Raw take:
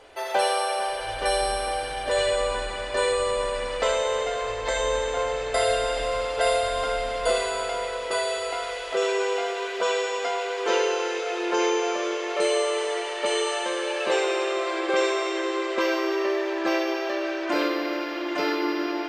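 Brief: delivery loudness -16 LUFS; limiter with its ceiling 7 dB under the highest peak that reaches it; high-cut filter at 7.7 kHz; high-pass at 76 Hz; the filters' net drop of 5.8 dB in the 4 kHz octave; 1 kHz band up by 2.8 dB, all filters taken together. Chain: high-pass 76 Hz; low-pass 7.7 kHz; peaking EQ 1 kHz +4 dB; peaking EQ 4 kHz -8 dB; trim +10 dB; peak limiter -6 dBFS

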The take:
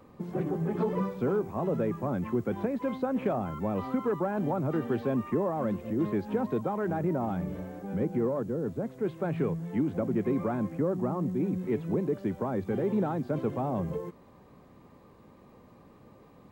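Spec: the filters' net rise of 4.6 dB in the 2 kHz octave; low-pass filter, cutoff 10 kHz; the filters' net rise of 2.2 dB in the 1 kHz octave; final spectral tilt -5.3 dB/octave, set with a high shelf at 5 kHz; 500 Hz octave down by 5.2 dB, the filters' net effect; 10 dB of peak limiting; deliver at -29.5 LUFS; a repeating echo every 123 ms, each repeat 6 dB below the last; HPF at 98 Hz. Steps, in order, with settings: high-pass 98 Hz; low-pass 10 kHz; peaking EQ 500 Hz -8 dB; peaking EQ 1 kHz +4.5 dB; peaking EQ 2 kHz +4 dB; treble shelf 5 kHz +7 dB; peak limiter -28.5 dBFS; feedback delay 123 ms, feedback 50%, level -6 dB; trim +6.5 dB

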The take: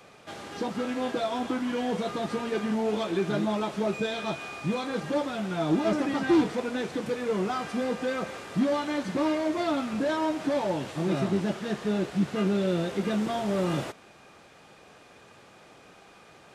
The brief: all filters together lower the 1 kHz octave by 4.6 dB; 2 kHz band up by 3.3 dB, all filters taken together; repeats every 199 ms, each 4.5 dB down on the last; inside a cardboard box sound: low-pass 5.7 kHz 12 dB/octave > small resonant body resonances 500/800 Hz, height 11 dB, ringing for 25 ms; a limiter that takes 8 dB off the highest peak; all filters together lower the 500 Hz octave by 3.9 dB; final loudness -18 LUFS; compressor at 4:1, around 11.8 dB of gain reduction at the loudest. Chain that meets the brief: peaking EQ 500 Hz -3.5 dB; peaking EQ 1 kHz -7 dB; peaking EQ 2 kHz +7 dB; compression 4:1, threshold -35 dBFS; peak limiter -32.5 dBFS; low-pass 5.7 kHz 12 dB/octave; feedback delay 199 ms, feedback 60%, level -4.5 dB; small resonant body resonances 500/800 Hz, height 11 dB, ringing for 25 ms; trim +18 dB

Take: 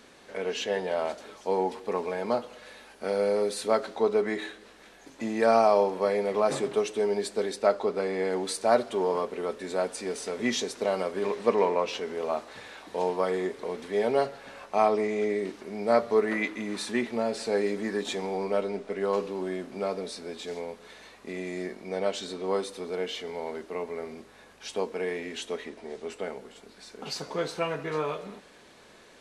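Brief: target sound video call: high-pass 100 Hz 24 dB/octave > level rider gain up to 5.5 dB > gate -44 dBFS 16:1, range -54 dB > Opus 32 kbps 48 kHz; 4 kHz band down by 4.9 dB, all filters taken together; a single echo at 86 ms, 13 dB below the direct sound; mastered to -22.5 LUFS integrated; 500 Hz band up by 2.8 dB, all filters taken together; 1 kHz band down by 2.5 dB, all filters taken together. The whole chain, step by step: high-pass 100 Hz 24 dB/octave; peaking EQ 500 Hz +5 dB; peaking EQ 1 kHz -6 dB; peaking EQ 4 kHz -6 dB; delay 86 ms -13 dB; level rider gain up to 5.5 dB; gate -44 dBFS 16:1, range -54 dB; trim +2 dB; Opus 32 kbps 48 kHz

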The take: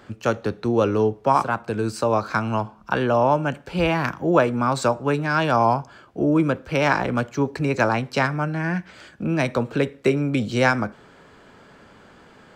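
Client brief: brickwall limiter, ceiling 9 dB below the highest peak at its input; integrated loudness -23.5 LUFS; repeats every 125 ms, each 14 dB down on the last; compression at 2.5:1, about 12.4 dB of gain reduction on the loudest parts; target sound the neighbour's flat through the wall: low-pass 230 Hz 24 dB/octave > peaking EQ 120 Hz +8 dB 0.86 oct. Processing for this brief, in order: compression 2.5:1, threshold -32 dBFS; peak limiter -22 dBFS; low-pass 230 Hz 24 dB/octave; peaking EQ 120 Hz +8 dB 0.86 oct; feedback delay 125 ms, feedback 20%, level -14 dB; trim +11 dB

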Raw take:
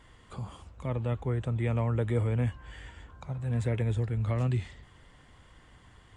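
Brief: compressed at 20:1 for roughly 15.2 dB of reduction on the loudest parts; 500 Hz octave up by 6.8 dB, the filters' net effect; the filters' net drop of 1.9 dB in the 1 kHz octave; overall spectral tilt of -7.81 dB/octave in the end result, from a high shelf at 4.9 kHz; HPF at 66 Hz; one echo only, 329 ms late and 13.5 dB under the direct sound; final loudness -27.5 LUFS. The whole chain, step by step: high-pass 66 Hz; peaking EQ 500 Hz +9 dB; peaking EQ 1 kHz -6 dB; treble shelf 4.9 kHz -3 dB; compression 20:1, threshold -34 dBFS; delay 329 ms -13.5 dB; trim +13.5 dB

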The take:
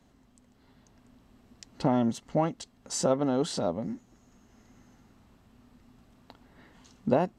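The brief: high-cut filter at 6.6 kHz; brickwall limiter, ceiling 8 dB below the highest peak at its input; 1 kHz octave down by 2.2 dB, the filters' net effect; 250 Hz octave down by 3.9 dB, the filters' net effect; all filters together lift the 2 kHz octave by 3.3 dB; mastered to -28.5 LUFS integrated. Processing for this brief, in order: low-pass 6.6 kHz; peaking EQ 250 Hz -4.5 dB; peaking EQ 1 kHz -4 dB; peaking EQ 2 kHz +6 dB; trim +6 dB; peak limiter -15 dBFS

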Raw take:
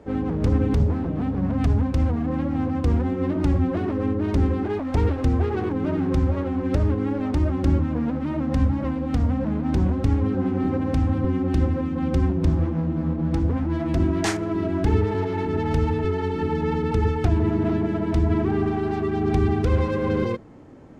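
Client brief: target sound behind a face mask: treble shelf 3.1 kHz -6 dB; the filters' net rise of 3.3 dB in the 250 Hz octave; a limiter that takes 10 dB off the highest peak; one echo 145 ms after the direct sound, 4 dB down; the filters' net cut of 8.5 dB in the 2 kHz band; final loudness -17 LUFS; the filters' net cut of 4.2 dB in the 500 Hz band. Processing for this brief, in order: peaking EQ 250 Hz +6.5 dB; peaking EQ 500 Hz -8.5 dB; peaking EQ 2 kHz -8.5 dB; peak limiter -16 dBFS; treble shelf 3.1 kHz -6 dB; delay 145 ms -4 dB; trim +5.5 dB

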